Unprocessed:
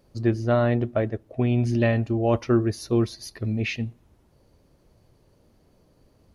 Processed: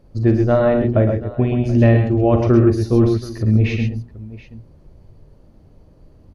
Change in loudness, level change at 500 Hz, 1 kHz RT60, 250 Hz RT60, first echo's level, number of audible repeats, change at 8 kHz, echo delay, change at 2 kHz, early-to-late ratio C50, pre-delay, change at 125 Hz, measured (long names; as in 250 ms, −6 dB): +8.0 dB, +7.5 dB, no reverb audible, no reverb audible, −11.0 dB, 3, can't be measured, 42 ms, +3.0 dB, no reverb audible, no reverb audible, +9.0 dB